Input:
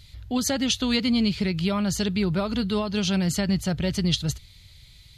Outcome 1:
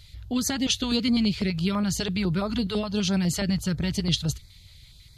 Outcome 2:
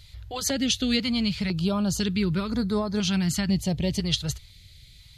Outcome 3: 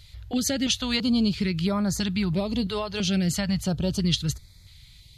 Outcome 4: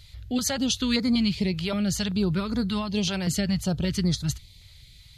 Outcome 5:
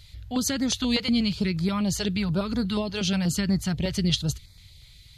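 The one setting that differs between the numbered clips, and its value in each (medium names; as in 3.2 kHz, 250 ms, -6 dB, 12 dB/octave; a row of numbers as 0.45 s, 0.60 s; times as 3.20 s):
step-sequenced notch, rate: 12 Hz, 2 Hz, 3 Hz, 5.2 Hz, 8.3 Hz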